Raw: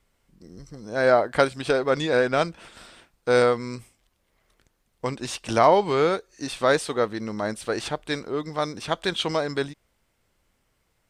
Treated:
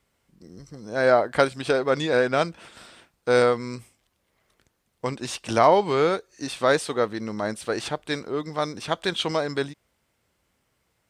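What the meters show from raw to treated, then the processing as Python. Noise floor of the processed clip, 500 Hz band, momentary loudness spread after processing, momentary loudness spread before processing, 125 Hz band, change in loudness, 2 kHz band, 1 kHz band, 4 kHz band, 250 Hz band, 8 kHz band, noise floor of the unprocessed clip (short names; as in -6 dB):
-73 dBFS, 0.0 dB, 12 LU, 12 LU, 0.0 dB, 0.0 dB, 0.0 dB, 0.0 dB, 0.0 dB, 0.0 dB, 0.0 dB, -71 dBFS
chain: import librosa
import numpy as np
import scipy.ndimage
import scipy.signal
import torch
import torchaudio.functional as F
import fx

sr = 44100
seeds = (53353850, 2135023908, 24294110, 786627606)

y = scipy.signal.sosfilt(scipy.signal.butter(2, 63.0, 'highpass', fs=sr, output='sos'), x)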